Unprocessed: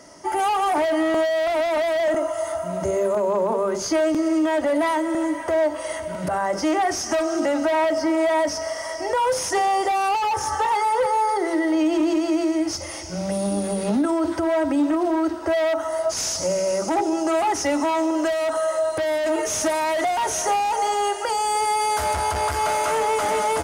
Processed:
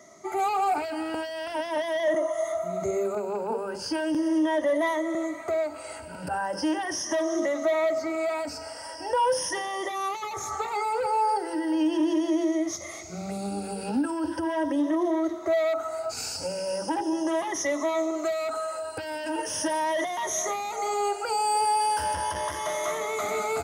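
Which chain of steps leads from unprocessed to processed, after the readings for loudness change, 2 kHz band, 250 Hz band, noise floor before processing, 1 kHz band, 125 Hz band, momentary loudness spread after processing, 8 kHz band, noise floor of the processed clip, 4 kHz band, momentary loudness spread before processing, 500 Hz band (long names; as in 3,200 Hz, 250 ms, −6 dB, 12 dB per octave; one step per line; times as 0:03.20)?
−5.5 dB, −5.5 dB, −5.0 dB, −31 dBFS, −6.0 dB, −8.5 dB, 8 LU, −5.5 dB, −40 dBFS, −5.0 dB, 4 LU, −6.0 dB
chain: rippled gain that drifts along the octave scale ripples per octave 1.2, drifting +0.39 Hz, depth 14 dB
high-pass filter 72 Hz
level −8 dB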